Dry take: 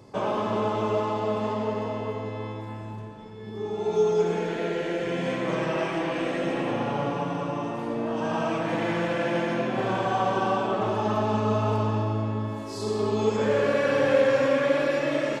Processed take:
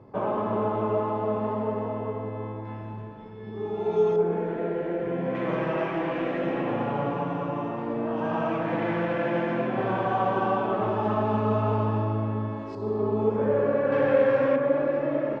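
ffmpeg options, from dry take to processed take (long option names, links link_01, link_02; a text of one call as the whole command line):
ffmpeg -i in.wav -af "asetnsamples=nb_out_samples=441:pad=0,asendcmd='2.65 lowpass f 2500;4.16 lowpass f 1200;5.35 lowpass f 2200;12.75 lowpass f 1100;13.92 lowpass f 1800;14.56 lowpass f 1100',lowpass=1500" out.wav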